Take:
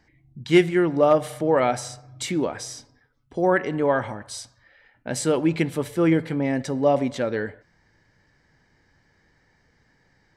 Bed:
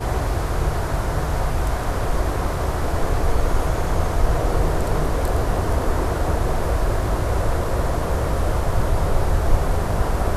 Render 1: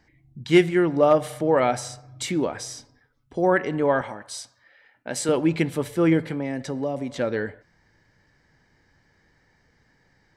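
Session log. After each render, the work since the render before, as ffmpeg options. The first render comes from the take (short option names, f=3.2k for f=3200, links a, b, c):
-filter_complex "[0:a]asettb=1/sr,asplit=3[a][b][c];[a]atrim=end=4.014[d];[b]atrim=start=4.01:end=5.29,asetpts=PTS-STARTPTS,afade=t=in:d=0.004:c=qsin,afade=t=out:st=1.276:d=0.004:c=qsin,highpass=f=330:p=1[e];[c]atrim=start=5.286[f];[d][e]acrossfade=d=0.004:c1=hsin:c2=qsin[g];[g][f]acrossfade=d=0.004:c1=qsin:c2=hsin,asettb=1/sr,asplit=3[h][i][j];[h]atrim=end=6.264[k];[i]atrim=start=6.26:end=7.19,asetpts=PTS-STARTPTS,afade=t=in:d=0.004:c=qsin,afade=t=out:st=0.926:d=0.004:c=qsin,acrossover=split=400|6800[l][m][n];[l]acompressor=threshold=-29dB:ratio=4[o];[m]acompressor=threshold=-31dB:ratio=4[p];[n]acompressor=threshold=-50dB:ratio=4[q];[o][p][q]amix=inputs=3:normalize=0[r];[j]atrim=start=7.186[s];[k][r]acrossfade=d=0.004:c1=hsin:c2=qsin[t];[t][s]acrossfade=d=0.004:c1=qsin:c2=hsin"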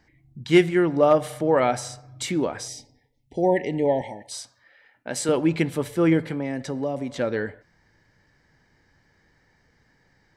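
-filter_complex "[0:a]asettb=1/sr,asplit=3[a][b][c];[a]atrim=end=2.684[d];[b]atrim=start=2.68:end=4.32,asetpts=PTS-STARTPTS,afade=t=in:d=0.004:c=qsin,afade=t=out:st=1.636:d=0.004:c=qsin,asuperstop=centerf=1300:order=20:qfactor=1.5[e];[c]atrim=start=4.316[f];[d][e]acrossfade=d=0.004:c1=hsin:c2=qsin[g];[g][f]acrossfade=d=0.004:c1=qsin:c2=hsin"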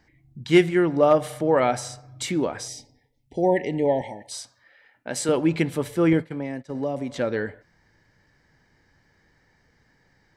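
-filter_complex "[0:a]asettb=1/sr,asplit=3[a][b][c];[a]atrim=end=6.134[d];[b]atrim=start=6.13:end=6.75,asetpts=PTS-STARTPTS,afade=t=in:d=0.004:c=qsin,afade=t=out:st=0.616:d=0.004:c=qsin,agate=range=-33dB:threshold=-26dB:ratio=3:release=100:detection=peak[e];[c]atrim=start=6.746[f];[d][e]acrossfade=d=0.004:c1=hsin:c2=qsin[g];[g][f]acrossfade=d=0.004:c1=qsin:c2=hsin"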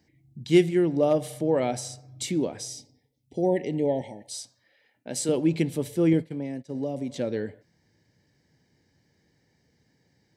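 -af "highpass=100,equalizer=f=1.3k:w=0.9:g=-15"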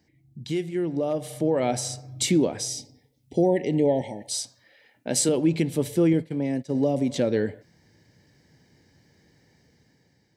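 -af "alimiter=limit=-19.5dB:level=0:latency=1:release=422,dynaudnorm=f=870:g=3:m=7.5dB"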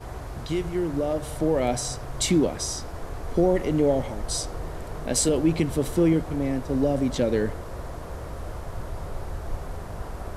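-filter_complex "[1:a]volume=-14dB[a];[0:a][a]amix=inputs=2:normalize=0"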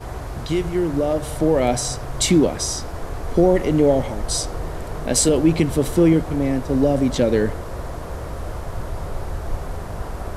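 -af "volume=5.5dB"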